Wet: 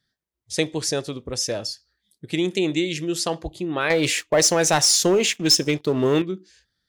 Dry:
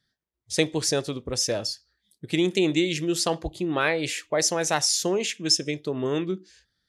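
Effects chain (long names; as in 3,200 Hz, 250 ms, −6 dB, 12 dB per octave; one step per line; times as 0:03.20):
0:03.90–0:06.22: leveller curve on the samples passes 2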